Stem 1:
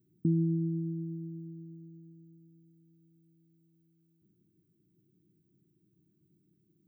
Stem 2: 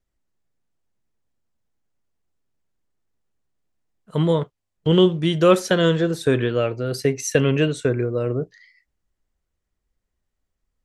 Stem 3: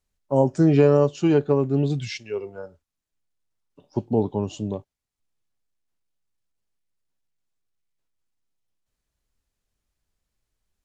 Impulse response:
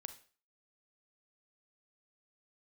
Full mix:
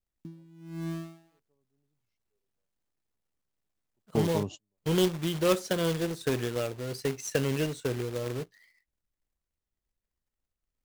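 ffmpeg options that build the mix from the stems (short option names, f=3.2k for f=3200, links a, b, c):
-filter_complex "[0:a]equalizer=f=64:w=2.1:g=-10,aeval=exprs='val(0)*gte(abs(val(0)),0.0126)':c=same,aeval=exprs='val(0)*pow(10,-28*(0.5-0.5*cos(2*PI*1.1*n/s))/20)':c=same,volume=2.5dB[a];[1:a]adynamicequalizer=threshold=0.0112:dfrequency=1600:dqfactor=1.7:tfrequency=1600:tqfactor=1.7:attack=5:release=100:ratio=0.375:range=2.5:mode=cutabove:tftype=bell,acrusher=bits=2:mode=log:mix=0:aa=0.000001,volume=-10.5dB,asplit=2[b][c];[2:a]volume=-6dB[d];[c]apad=whole_len=478131[e];[d][e]sidechaingate=range=-51dB:threshold=-48dB:ratio=16:detection=peak[f];[a][b][f]amix=inputs=3:normalize=0"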